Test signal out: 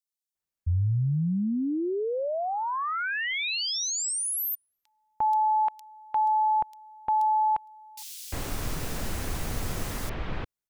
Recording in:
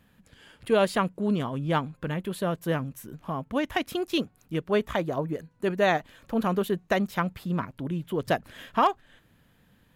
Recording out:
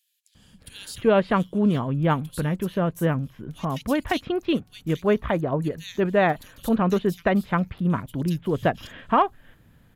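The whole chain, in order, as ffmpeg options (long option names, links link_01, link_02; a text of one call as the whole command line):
ffmpeg -i in.wav -filter_complex "[0:a]lowshelf=frequency=170:gain=7.5,acrossover=split=3400[link_01][link_02];[link_01]adelay=350[link_03];[link_03][link_02]amix=inputs=2:normalize=0,volume=2.5dB" out.wav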